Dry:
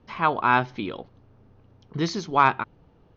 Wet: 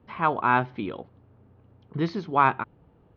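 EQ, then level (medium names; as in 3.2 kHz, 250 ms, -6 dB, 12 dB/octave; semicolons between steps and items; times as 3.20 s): high-pass 47 Hz; distance through air 310 m; 0.0 dB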